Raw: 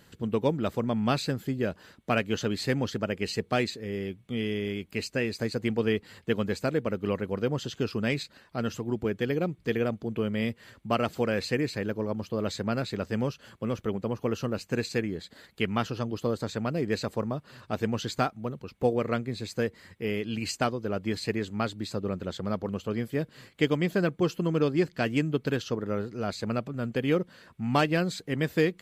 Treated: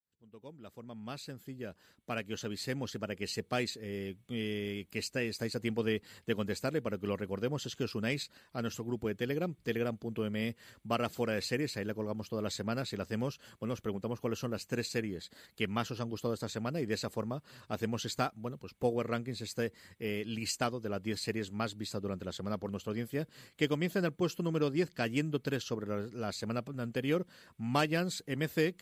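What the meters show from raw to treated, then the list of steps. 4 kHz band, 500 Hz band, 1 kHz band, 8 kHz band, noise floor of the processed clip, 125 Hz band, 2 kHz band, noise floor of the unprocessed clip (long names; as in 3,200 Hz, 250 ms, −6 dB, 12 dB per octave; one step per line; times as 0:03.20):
−3.5 dB, −6.5 dB, −6.5 dB, −1.0 dB, −67 dBFS, −6.5 dB, −5.5 dB, −59 dBFS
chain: fade in at the beginning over 4.00 s
high-shelf EQ 5,000 Hz +8.5 dB
level −6 dB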